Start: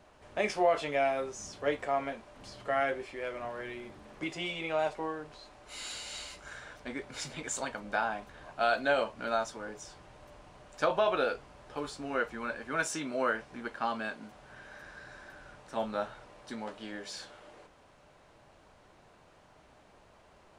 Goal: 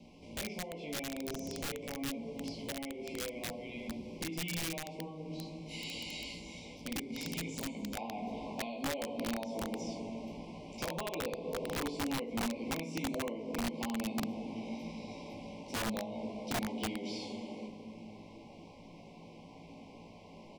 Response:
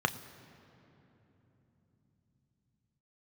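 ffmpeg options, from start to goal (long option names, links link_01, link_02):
-filter_complex "[1:a]atrim=start_sample=2205,asetrate=79380,aresample=44100[link_01];[0:a][link_01]afir=irnorm=-1:irlink=0,acrossover=split=3200[link_02][link_03];[link_03]acompressor=threshold=-49dB:ratio=4:attack=1:release=60[link_04];[link_02][link_04]amix=inputs=2:normalize=0,lowshelf=frequency=200:gain=9,acompressor=threshold=-34dB:ratio=20,asuperstop=centerf=1500:order=20:qfactor=1.5,aecho=1:1:18|30|73:0.668|0.224|0.282,aeval=exprs='(mod(28.2*val(0)+1,2)-1)/28.2':channel_layout=same,asetnsamples=nb_out_samples=441:pad=0,asendcmd='7.97 equalizer g -2.5',equalizer=frequency=960:width=0.57:gain=-10.5,volume=1dB"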